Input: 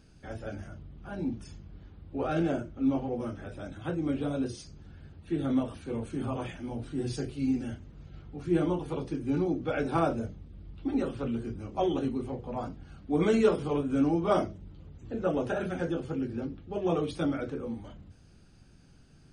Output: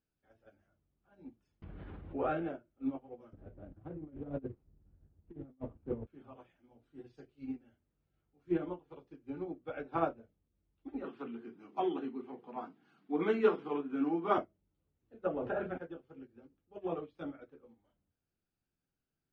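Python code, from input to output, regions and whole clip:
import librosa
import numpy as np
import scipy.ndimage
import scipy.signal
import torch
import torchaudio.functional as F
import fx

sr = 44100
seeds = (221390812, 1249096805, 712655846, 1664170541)

y = fx.chain(x, sr, fx.lowpass(hz=3900.0, slope=12),
    fx.env_flatten(amount_pct=100), at=(1.62, 2.49))
y = fx.chain(y, sr, fx.median_filter(points=25),
    fx.tilt_eq(slope=-3.5),
    fx.over_compress(threshold_db=-26.0, ratio=-0.5), at=(3.33, 6.07))
y = fx.chain(y, sr, fx.highpass(hz=190.0, slope=24),
    fx.peak_eq(hz=560.0, db=-14.0, octaves=0.34),
    fx.env_flatten(amount_pct=50), at=(11.04, 14.38))
y = fx.chain(y, sr, fx.high_shelf(hz=3000.0, db=-9.5),
    fx.env_flatten(amount_pct=100), at=(15.27, 15.78))
y = fx.env_lowpass_down(y, sr, base_hz=2900.0, full_db=-25.5)
y = fx.bass_treble(y, sr, bass_db=-8, treble_db=-9)
y = fx.upward_expand(y, sr, threshold_db=-41.0, expansion=2.5)
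y = y * 10.0 ** (1.0 / 20.0)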